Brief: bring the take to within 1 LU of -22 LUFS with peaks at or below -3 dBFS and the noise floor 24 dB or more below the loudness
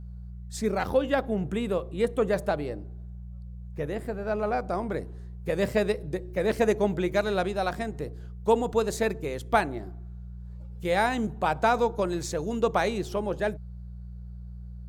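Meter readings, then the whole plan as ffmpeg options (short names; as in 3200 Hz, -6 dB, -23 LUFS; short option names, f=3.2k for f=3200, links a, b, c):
hum 60 Hz; harmonics up to 180 Hz; hum level -38 dBFS; loudness -28.0 LUFS; peak -9.5 dBFS; loudness target -22.0 LUFS
-> -af "bandreject=f=60:t=h:w=4,bandreject=f=120:t=h:w=4,bandreject=f=180:t=h:w=4"
-af "volume=6dB"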